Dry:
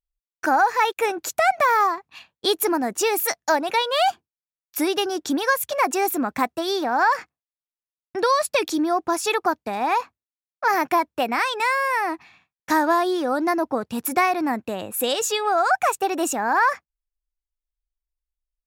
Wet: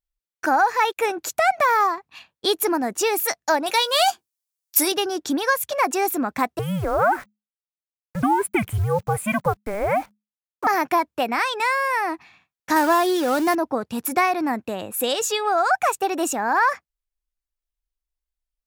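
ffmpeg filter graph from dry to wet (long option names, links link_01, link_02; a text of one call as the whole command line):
ffmpeg -i in.wav -filter_complex "[0:a]asettb=1/sr,asplit=3[link_01][link_02][link_03];[link_01]atrim=end=3.664[link_04];[link_02]atrim=start=3.66:end=4.92,asetpts=PTS-STARTPTS,afade=type=in:duration=0.004:curve=qsin,afade=type=out:start_time=1.256:duration=0.004:curve=qsin,bass=frequency=250:gain=-9,treble=frequency=4000:gain=12,acrusher=bits=7:mode=log:mix=0:aa=0.000001,asplit=2[link_05][link_06];[link_06]adelay=14,volume=-13dB[link_07];[link_05][link_07]amix=inputs=2:normalize=0,atrim=end_sample=55566[link_08];[link_03]atrim=start=4.916[link_09];[link_04][link_08]acrossfade=duration=0.004:curve1=hsin:curve2=qsin[link_10];[link_10][link_09]acrossfade=duration=0.004:curve1=qsin:curve2=hsin,asettb=1/sr,asplit=3[link_11][link_12][link_13];[link_11]atrim=end=6.594[link_14];[link_12]atrim=start=6.59:end=10.67,asetpts=PTS-STARTPTS,afade=type=in:duration=0.004:curve=qsin,afade=type=out:start_time=4.076:duration=0.004:curve=qsin,asuperstop=centerf=5100:order=8:qfactor=0.96,acrusher=bits=8:dc=4:mix=0:aa=0.000001,afreqshift=-210[link_15];[link_13]atrim=start=10.666[link_16];[link_14][link_15]acrossfade=duration=0.004:curve1=hsin:curve2=qsin[link_17];[link_17][link_16]acrossfade=duration=0.004:curve1=qsin:curve2=hsin,asettb=1/sr,asplit=3[link_18][link_19][link_20];[link_18]atrim=end=12.764[link_21];[link_19]atrim=start=12.76:end=13.55,asetpts=PTS-STARTPTS,afade=type=in:duration=0.004:curve=qsin,afade=type=out:start_time=0.786:duration=0.004:curve=qsin,aeval=exprs='val(0)+0.5*0.0422*sgn(val(0))':channel_layout=same,highpass=67,highshelf=frequency=4900:gain=6.5[link_22];[link_20]atrim=start=13.546[link_23];[link_21][link_22]acrossfade=duration=0.004:curve1=hsin:curve2=qsin[link_24];[link_24][link_23]acrossfade=duration=0.004:curve1=qsin:curve2=hsin" out.wav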